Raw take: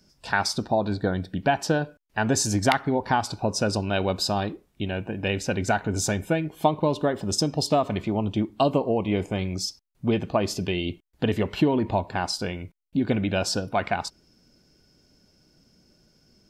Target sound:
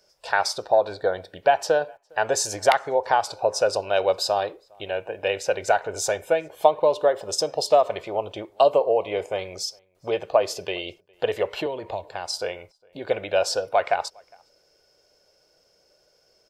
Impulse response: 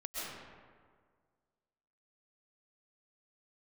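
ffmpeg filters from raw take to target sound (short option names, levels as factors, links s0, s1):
-filter_complex "[0:a]lowshelf=f=350:t=q:w=3:g=-13.5,asettb=1/sr,asplit=3[s0][s1][s2];[s0]atrim=end=11.664[s3];[s1]atrim=start=11.66:end=12.38,asetpts=PTS-STARTPTS,afade=t=in:d=0.004:c=qsin,afade=t=out:st=0.716:d=0.004:c=qsin,acrossover=split=250|3000[s4][s5][s6];[s5]acompressor=threshold=0.0355:ratio=6[s7];[s4][s7][s6]amix=inputs=3:normalize=0[s8];[s2]atrim=start=12.376[s9];[s3][s8]acrossfade=d=0.004:c1=hsin:c2=qsin[s10];[s10][s9]acrossfade=d=0.004:c1=qsin:c2=hsin,asplit=2[s11][s12];[s12]adelay=408.2,volume=0.0355,highshelf=f=4000:g=-9.18[s13];[s11][s13]amix=inputs=2:normalize=0"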